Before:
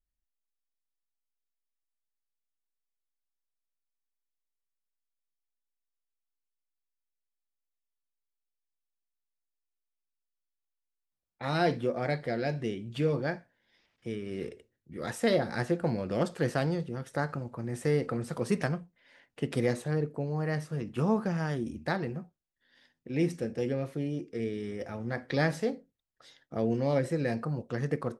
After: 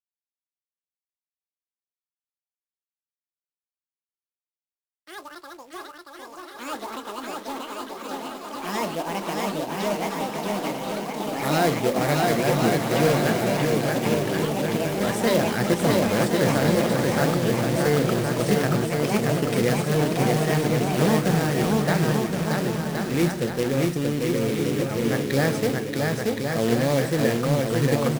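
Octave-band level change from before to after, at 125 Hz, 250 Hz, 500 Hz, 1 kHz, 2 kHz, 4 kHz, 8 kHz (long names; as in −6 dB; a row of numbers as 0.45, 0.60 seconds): +9.5, +10.0, +9.5, +12.0, +10.5, +14.5, +18.5 decibels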